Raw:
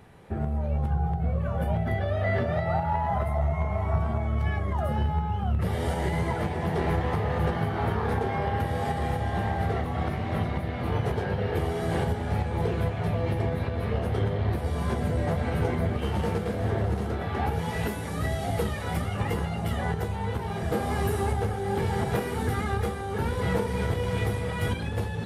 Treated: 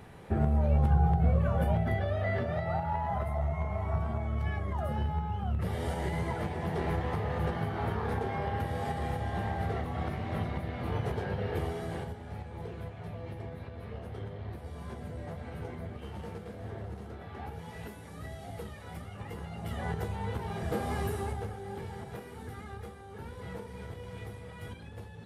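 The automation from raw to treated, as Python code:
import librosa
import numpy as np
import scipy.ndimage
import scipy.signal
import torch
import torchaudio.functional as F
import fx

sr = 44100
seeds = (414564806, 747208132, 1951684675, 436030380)

y = fx.gain(x, sr, db=fx.line((1.28, 2.0), (2.36, -5.5), (11.66, -5.5), (12.18, -14.0), (19.27, -14.0), (19.96, -5.0), (20.92, -5.0), (22.05, -15.5)))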